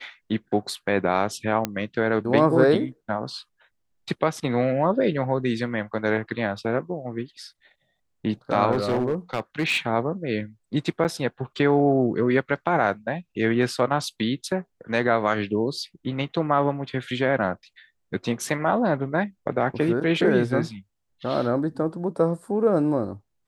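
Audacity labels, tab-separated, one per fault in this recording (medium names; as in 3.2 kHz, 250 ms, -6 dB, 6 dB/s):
1.650000	1.650000	pop -8 dBFS
8.710000	9.780000	clipped -18.5 dBFS
11.040000	11.050000	dropout 8.5 ms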